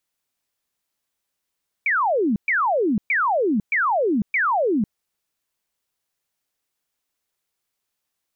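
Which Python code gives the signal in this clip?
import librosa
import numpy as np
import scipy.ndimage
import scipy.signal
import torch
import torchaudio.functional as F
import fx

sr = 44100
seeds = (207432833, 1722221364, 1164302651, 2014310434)

y = fx.laser_zaps(sr, level_db=-17, start_hz=2400.0, end_hz=190.0, length_s=0.5, wave='sine', shots=5, gap_s=0.12)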